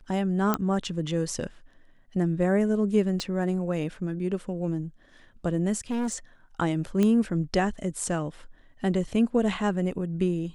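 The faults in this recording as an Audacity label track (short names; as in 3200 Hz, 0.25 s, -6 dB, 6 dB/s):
0.540000	0.540000	pop -10 dBFS
3.200000	3.200000	pop -17 dBFS
5.900000	6.160000	clipped -25.5 dBFS
7.030000	7.030000	pop -13 dBFS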